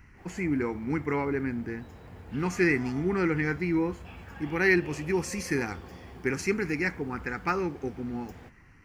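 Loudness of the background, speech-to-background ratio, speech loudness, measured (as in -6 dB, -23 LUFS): -47.5 LUFS, 18.0 dB, -29.5 LUFS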